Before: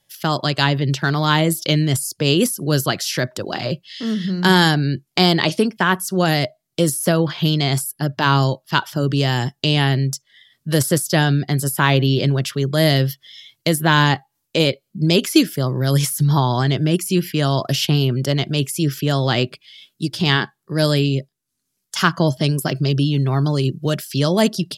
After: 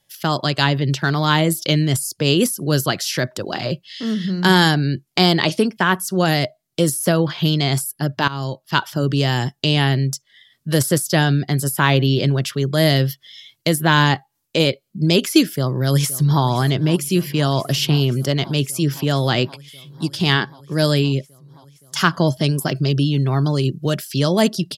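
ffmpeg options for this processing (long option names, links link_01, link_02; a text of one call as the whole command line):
ffmpeg -i in.wav -filter_complex "[0:a]asplit=2[link_01][link_02];[link_02]afade=type=in:start_time=15.51:duration=0.01,afade=type=out:start_time=16.44:duration=0.01,aecho=0:1:520|1040|1560|2080|2600|3120|3640|4160|4680|5200|5720|6240:0.133352|0.113349|0.0963469|0.0818949|0.0696107|0.0591691|0.0502937|0.0427496|0.0363372|0.0308866|0.0262536|0.0223156[link_03];[link_01][link_03]amix=inputs=2:normalize=0,asplit=2[link_04][link_05];[link_04]atrim=end=8.28,asetpts=PTS-STARTPTS,afade=type=out:start_time=8.276:duration=0.004:curve=hsin:silence=0.11885[link_06];[link_05]atrim=start=8.28,asetpts=PTS-STARTPTS,afade=type=in:duration=0.49:silence=0.11885[link_07];[link_06][link_07]concat=n=2:v=0:a=1" out.wav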